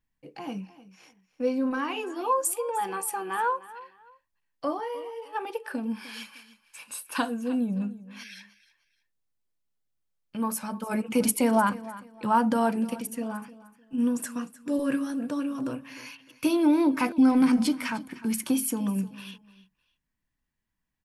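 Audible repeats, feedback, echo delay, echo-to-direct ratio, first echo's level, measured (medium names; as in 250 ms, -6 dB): 2, 27%, 304 ms, -17.0 dB, -17.5 dB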